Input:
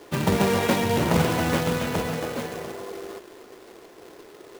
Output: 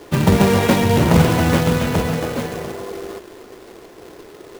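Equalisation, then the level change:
low-shelf EQ 170 Hz +8.5 dB
+5.0 dB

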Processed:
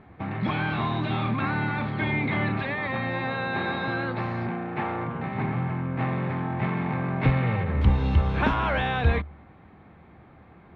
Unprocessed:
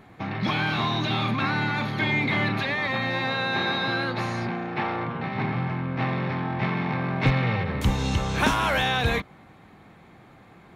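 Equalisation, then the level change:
high-frequency loss of the air 390 metres
parametric band 74 Hz +13.5 dB 0.24 octaves
0.0 dB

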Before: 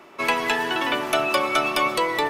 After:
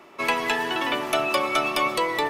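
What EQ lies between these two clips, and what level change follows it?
notch filter 1,500 Hz, Q 24
−1.5 dB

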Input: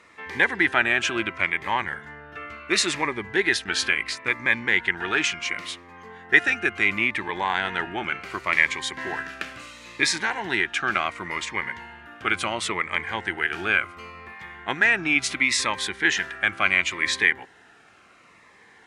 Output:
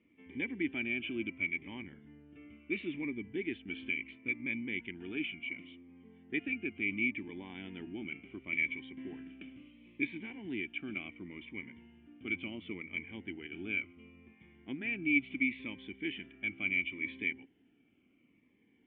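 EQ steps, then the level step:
formant resonators in series i
high-shelf EQ 3,500 Hz −12 dB
dynamic equaliser 2,400 Hz, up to +6 dB, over −51 dBFS, Q 2.8
0.0 dB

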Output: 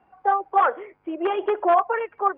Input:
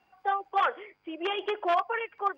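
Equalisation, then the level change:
low-pass filter 1,300 Hz 12 dB per octave
+8.5 dB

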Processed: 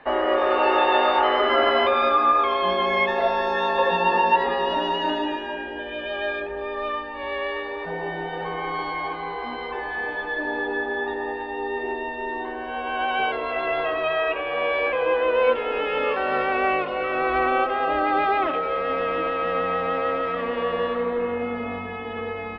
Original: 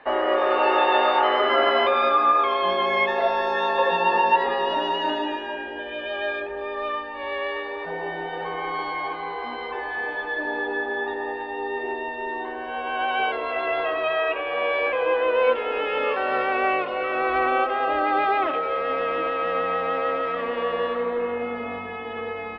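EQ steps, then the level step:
bass and treble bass +7 dB, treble +1 dB
0.0 dB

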